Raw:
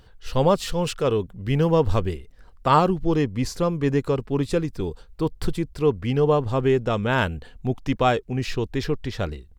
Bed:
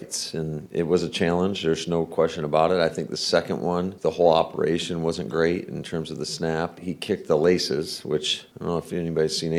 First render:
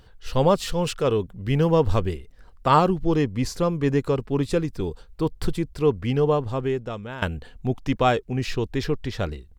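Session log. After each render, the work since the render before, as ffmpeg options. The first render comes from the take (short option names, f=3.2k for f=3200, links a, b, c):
-filter_complex "[0:a]asplit=2[a][b];[a]atrim=end=7.22,asetpts=PTS-STARTPTS,afade=t=out:st=6.09:d=1.13:silence=0.149624[c];[b]atrim=start=7.22,asetpts=PTS-STARTPTS,afade=t=in:d=0.004:c=hsin:silence=0.149624[d];[c][d]concat=n=2:v=0:a=1"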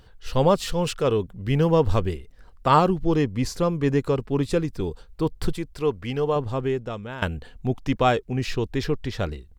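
-filter_complex "[0:a]asettb=1/sr,asplit=3[a][b][c];[a]atrim=end=5.524[d];[b]atrim=start=5.52:end=6.36,asetpts=PTS-STARTPTS,afade=t=in:d=0.004:c=qsin,afade=t=out:st=0.836:d=0.004:c=qsin,equalizer=f=120:w=0.31:g=-6.5[e];[c]atrim=start=6.356[f];[d][e]acrossfade=d=0.004:c1=hsin:c2=qsin[g];[g][f]acrossfade=d=0.004:c1=qsin:c2=hsin"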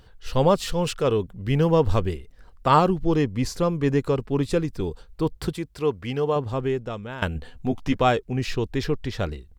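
-filter_complex "[0:a]asettb=1/sr,asplit=3[a][b][c];[a]atrim=end=5.374[d];[b]atrim=start=5.37:end=6.53,asetpts=PTS-STARTPTS,afade=t=in:d=0.004:c=qsin,afade=t=out:st=1.156:d=0.004:c=qsin,highpass=59[e];[c]atrim=start=6.526[f];[d][e]acrossfade=d=0.004:c1=hsin:c2=qsin[g];[g][f]acrossfade=d=0.004:c1=qsin:c2=hsin,asettb=1/sr,asplit=3[h][i][j];[h]atrim=end=7.344[k];[i]atrim=start=7.34:end=8.02,asetpts=PTS-STARTPTS,afade=t=in:d=0.004:c=qsin,afade=t=out:st=0.676:d=0.004:c=qsin,asplit=2[l][m];[m]adelay=12,volume=-4.5dB[n];[l][n]amix=inputs=2:normalize=0,atrim=end_sample=29988[o];[j]atrim=start=8.016[p];[k][o]acrossfade=d=0.004:c1=hsin:c2=qsin[q];[q][p]acrossfade=d=0.004:c1=qsin:c2=hsin"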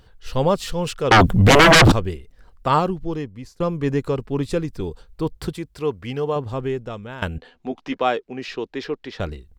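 -filter_complex "[0:a]asettb=1/sr,asplit=3[a][b][c];[a]atrim=end=1.114[d];[b]atrim=start=1.11:end=1.92,asetpts=PTS-STARTPTS,afade=t=in:d=0.004:c=qsin,afade=t=out:st=0.806:d=0.004:c=qsin,aeval=exprs='0.447*sin(PI/2*8.91*val(0)/0.447)':c=same[e];[c]atrim=start=1.916[f];[d][e]acrossfade=d=0.004:c1=hsin:c2=qsin[g];[g][f]acrossfade=d=0.004:c1=qsin:c2=hsin,asettb=1/sr,asplit=3[h][i][j];[h]atrim=end=7.384[k];[i]atrim=start=7.38:end=9.2,asetpts=PTS-STARTPTS,afade=t=in:d=0.004:c=qsin,afade=t=out:st=1.816:d=0.004:c=qsin,acrossover=split=230 5800:gain=0.0708 1 0.141[l][m][n];[l][m][n]amix=inputs=3:normalize=0[o];[j]atrim=start=9.196[p];[k][o]acrossfade=d=0.004:c1=hsin:c2=qsin[q];[q][p]acrossfade=d=0.004:c1=qsin:c2=hsin,asplit=2[r][s];[r]atrim=end=3.6,asetpts=PTS-STARTPTS,afade=t=out:st=2.67:d=0.93:silence=0.0668344[t];[s]atrim=start=3.6,asetpts=PTS-STARTPTS,afade=t=in:d=0.004:c=hsin:silence=0.0668344[u];[t][u]concat=n=2:v=0:a=1"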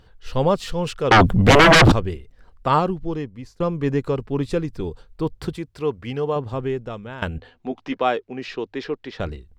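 -af "highshelf=f=6.7k:g=-8,bandreject=f=50:t=h:w=6,bandreject=f=100:t=h:w=6"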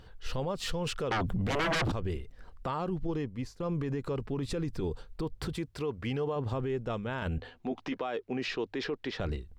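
-af "acompressor=threshold=-22dB:ratio=6,alimiter=level_in=1dB:limit=-24dB:level=0:latency=1:release=30,volume=-1dB"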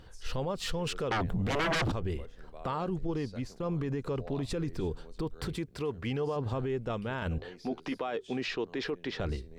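-filter_complex "[1:a]volume=-29.5dB[a];[0:a][a]amix=inputs=2:normalize=0"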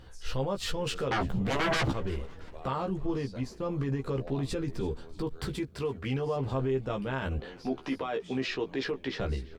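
-filter_complex "[0:a]asplit=2[a][b];[b]adelay=15,volume=-4.5dB[c];[a][c]amix=inputs=2:normalize=0,asplit=5[d][e][f][g][h];[e]adelay=339,afreqshift=-90,volume=-22dB[i];[f]adelay=678,afreqshift=-180,volume=-27.5dB[j];[g]adelay=1017,afreqshift=-270,volume=-33dB[k];[h]adelay=1356,afreqshift=-360,volume=-38.5dB[l];[d][i][j][k][l]amix=inputs=5:normalize=0"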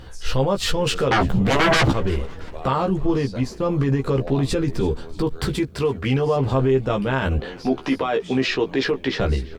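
-af "volume=11dB"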